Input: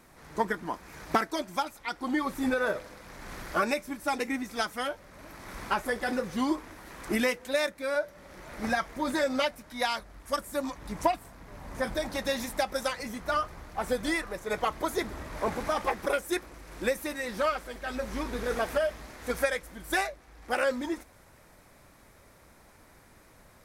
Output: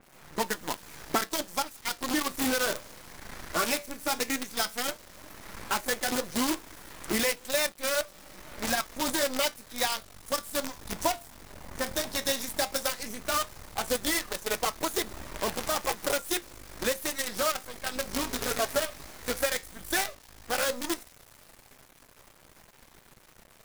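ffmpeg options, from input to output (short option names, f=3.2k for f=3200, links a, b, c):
-filter_complex "[0:a]asettb=1/sr,asplit=3[a][b][c];[a]atrim=end=18.144[d];[b]atrim=start=18.14:end=19.04,asetpts=PTS-STARTPTS,afade=t=in:d=0.004:c=qsin,afade=t=out:st=0.896:d=0.004:c=qsin,aecho=1:1:7.3:0.64,atrim=end_sample=39690[e];[c]atrim=start=19.036[f];[d][e]acrossfade=d=0.004:c1=hsin:c2=qsin[g];[g][f]acrossfade=d=0.004:c1=qsin:c2=hsin,asplit=2[h][i];[i]acompressor=threshold=-35dB:ratio=16,volume=1dB[j];[h][j]amix=inputs=2:normalize=0,acrusher=bits=5:dc=4:mix=0:aa=0.000001,flanger=delay=5.1:depth=7.9:regen=-73:speed=0.13:shape=triangular,adynamicequalizer=threshold=0.00501:dfrequency=3300:dqfactor=0.7:tfrequency=3300:tqfactor=0.7:attack=5:release=100:ratio=0.375:range=3.5:mode=boostabove:tftype=highshelf"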